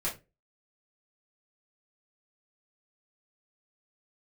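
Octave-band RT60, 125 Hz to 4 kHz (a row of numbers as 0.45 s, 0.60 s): 0.35 s, 0.35 s, 0.30 s, 0.20 s, 0.20 s, 0.20 s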